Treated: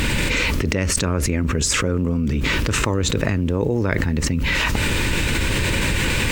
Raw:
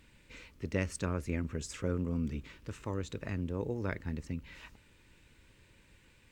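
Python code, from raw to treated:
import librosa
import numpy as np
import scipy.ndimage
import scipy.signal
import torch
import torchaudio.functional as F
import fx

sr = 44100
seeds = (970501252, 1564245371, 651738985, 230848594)

y = fx.env_flatten(x, sr, amount_pct=100)
y = y * librosa.db_to_amplitude(9.0)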